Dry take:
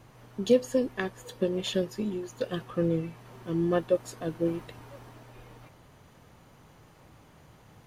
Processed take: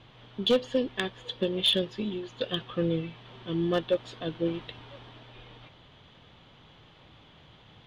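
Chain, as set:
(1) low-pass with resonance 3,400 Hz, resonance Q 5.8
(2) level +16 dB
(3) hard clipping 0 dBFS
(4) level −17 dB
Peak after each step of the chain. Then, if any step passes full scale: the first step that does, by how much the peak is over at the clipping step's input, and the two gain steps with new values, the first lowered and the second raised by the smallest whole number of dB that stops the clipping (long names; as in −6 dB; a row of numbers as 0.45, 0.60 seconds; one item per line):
−10.0, +6.0, 0.0, −17.0 dBFS
step 2, 6.0 dB
step 2 +10 dB, step 4 −11 dB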